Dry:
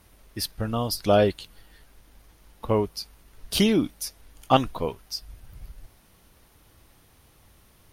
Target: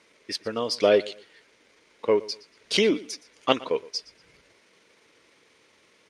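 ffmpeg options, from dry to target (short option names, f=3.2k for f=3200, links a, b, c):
-filter_complex "[0:a]asplit=2[a][b];[b]aeval=exprs='clip(val(0),-1,0.075)':c=same,volume=-12dB[c];[a][c]amix=inputs=2:normalize=0,highpass=330,equalizer=f=450:t=q:w=4:g=6,equalizer=f=760:t=q:w=4:g=-9,equalizer=f=1.2k:t=q:w=4:g=-3,equalizer=f=2.2k:t=q:w=4:g=7,lowpass=f=7.4k:w=0.5412,lowpass=f=7.4k:w=1.3066,atempo=1.3,aecho=1:1:118|236:0.0944|0.0264"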